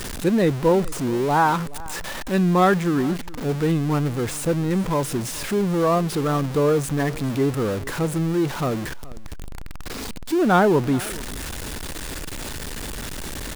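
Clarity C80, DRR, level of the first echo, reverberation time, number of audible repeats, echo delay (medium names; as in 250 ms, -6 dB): no reverb, no reverb, -20.5 dB, no reverb, 1, 424 ms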